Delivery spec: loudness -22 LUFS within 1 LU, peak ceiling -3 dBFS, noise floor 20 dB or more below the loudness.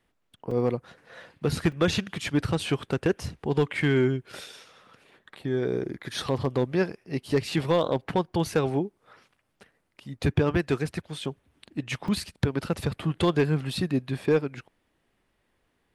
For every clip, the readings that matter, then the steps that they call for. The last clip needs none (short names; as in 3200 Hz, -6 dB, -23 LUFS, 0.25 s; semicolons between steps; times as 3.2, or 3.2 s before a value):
clipped 0.3%; flat tops at -14.5 dBFS; dropouts 3; longest dropout 3.6 ms; loudness -27.5 LUFS; peak -14.5 dBFS; loudness target -22.0 LUFS
-> clip repair -14.5 dBFS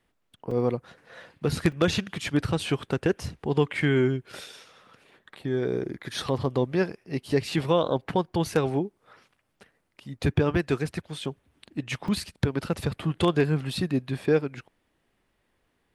clipped 0.0%; dropouts 3; longest dropout 3.6 ms
-> interpolate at 0.51/1.72/12.08, 3.6 ms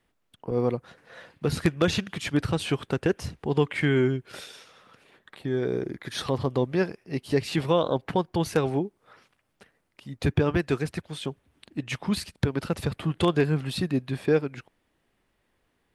dropouts 0; loudness -27.5 LUFS; peak -6.0 dBFS; loudness target -22.0 LUFS
-> gain +5.5 dB; limiter -3 dBFS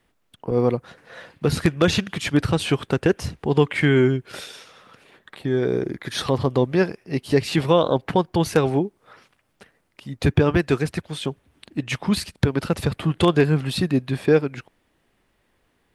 loudness -22.0 LUFS; peak -3.0 dBFS; noise floor -68 dBFS